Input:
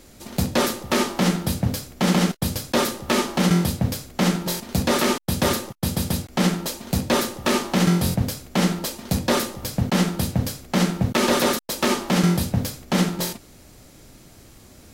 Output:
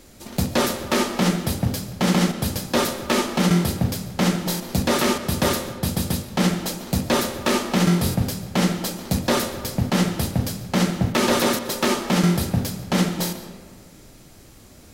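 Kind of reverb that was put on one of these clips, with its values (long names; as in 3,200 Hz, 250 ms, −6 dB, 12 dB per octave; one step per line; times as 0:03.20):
comb and all-pass reverb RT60 1.8 s, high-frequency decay 0.5×, pre-delay 85 ms, DRR 11 dB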